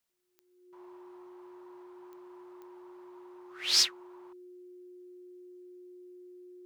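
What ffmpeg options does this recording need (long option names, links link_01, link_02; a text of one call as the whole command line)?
ffmpeg -i in.wav -af "adeclick=threshold=4,bandreject=frequency=360:width=30" out.wav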